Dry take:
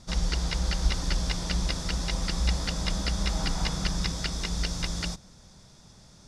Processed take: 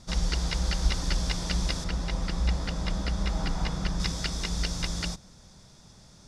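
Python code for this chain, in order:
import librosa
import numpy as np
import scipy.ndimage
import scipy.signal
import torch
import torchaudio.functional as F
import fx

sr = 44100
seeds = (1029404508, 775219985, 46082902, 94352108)

y = fx.high_shelf(x, sr, hz=3300.0, db=-10.0, at=(1.84, 4.0))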